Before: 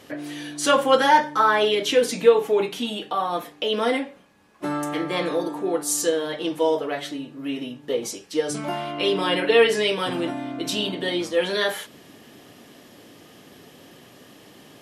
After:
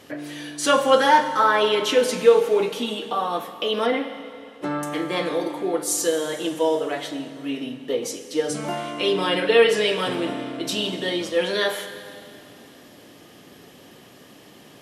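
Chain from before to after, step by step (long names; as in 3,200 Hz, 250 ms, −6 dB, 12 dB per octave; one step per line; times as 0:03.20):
0:03.85–0:04.83: treble cut that deepens with the level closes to 3,000 Hz, closed at −20.5 dBFS
four-comb reverb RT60 2.5 s, combs from 32 ms, DRR 9.5 dB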